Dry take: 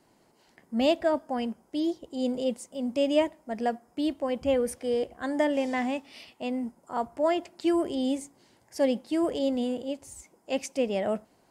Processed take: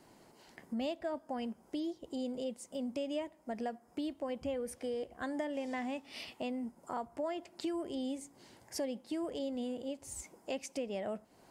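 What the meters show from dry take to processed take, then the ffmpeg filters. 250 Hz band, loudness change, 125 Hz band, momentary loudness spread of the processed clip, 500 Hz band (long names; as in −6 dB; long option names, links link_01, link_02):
−10.0 dB, −10.5 dB, −8.5 dB, 5 LU, −11.5 dB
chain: -af "acompressor=threshold=-41dB:ratio=4,volume=3dB"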